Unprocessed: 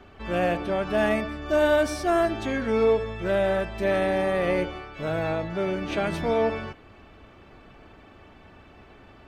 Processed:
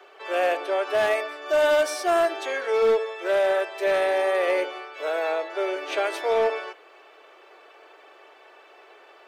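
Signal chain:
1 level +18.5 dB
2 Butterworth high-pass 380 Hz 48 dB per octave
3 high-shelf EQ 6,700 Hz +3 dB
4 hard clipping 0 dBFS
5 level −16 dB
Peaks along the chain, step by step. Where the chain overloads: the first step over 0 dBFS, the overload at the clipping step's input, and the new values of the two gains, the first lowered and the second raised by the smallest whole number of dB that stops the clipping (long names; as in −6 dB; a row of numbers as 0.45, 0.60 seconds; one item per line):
+6.5, +5.5, +5.5, 0.0, −16.0 dBFS
step 1, 5.5 dB
step 1 +12.5 dB, step 5 −10 dB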